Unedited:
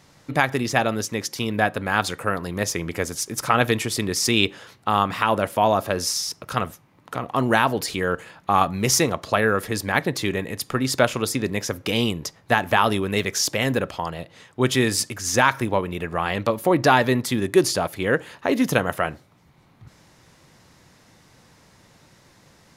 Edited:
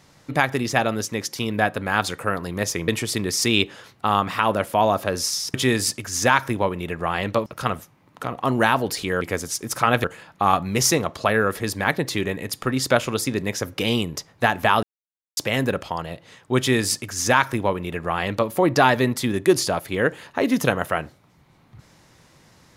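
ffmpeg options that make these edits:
ffmpeg -i in.wav -filter_complex "[0:a]asplit=8[link_01][link_02][link_03][link_04][link_05][link_06][link_07][link_08];[link_01]atrim=end=2.882[link_09];[link_02]atrim=start=3.708:end=6.372[link_10];[link_03]atrim=start=14.658:end=16.582[link_11];[link_04]atrim=start=6.368:end=8.122[link_12];[link_05]atrim=start=2.878:end=3.712[link_13];[link_06]atrim=start=8.118:end=12.91,asetpts=PTS-STARTPTS,afade=type=out:start_time=4.788:duration=0.004:curve=hsin[link_14];[link_07]atrim=start=12.91:end=13.45,asetpts=PTS-STARTPTS,volume=0[link_15];[link_08]atrim=start=13.45,asetpts=PTS-STARTPTS,afade=type=in:duration=0.004:curve=hsin[link_16];[link_09][link_10]acrossfade=duration=0.004:curve1=hsin:curve2=hsin[link_17];[link_17][link_11]acrossfade=duration=0.004:curve1=hsin:curve2=hsin[link_18];[link_18][link_12]acrossfade=duration=0.004:curve1=hsin:curve2=hsin[link_19];[link_19][link_13]acrossfade=duration=0.004:curve1=hsin:curve2=hsin[link_20];[link_14][link_15][link_16]concat=n=3:v=0:a=1[link_21];[link_20][link_21]acrossfade=duration=0.004:curve1=hsin:curve2=hsin" out.wav

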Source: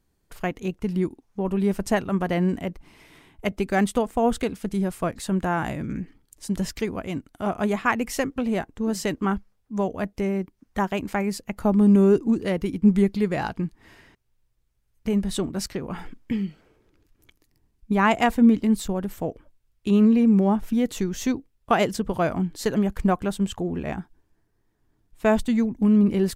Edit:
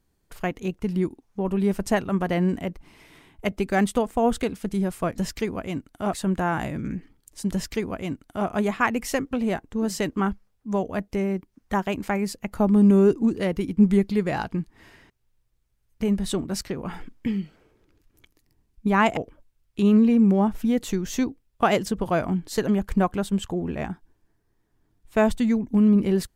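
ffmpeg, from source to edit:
ffmpeg -i in.wav -filter_complex "[0:a]asplit=4[link_01][link_02][link_03][link_04];[link_01]atrim=end=5.182[link_05];[link_02]atrim=start=6.578:end=7.532[link_06];[link_03]atrim=start=5.178:end=18.222[link_07];[link_04]atrim=start=19.248[link_08];[link_05][link_06]acrossfade=duration=0.004:curve1=hsin:curve2=hsin[link_09];[link_09][link_07]acrossfade=duration=0.004:curve1=hsin:curve2=hsin[link_10];[link_10][link_08]acrossfade=duration=0.004:curve1=hsin:curve2=hsin" out.wav

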